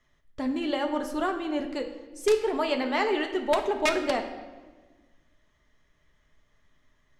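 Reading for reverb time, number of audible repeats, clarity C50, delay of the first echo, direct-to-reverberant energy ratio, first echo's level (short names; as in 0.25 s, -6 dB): 1.4 s, none, 9.0 dB, none, 4.0 dB, none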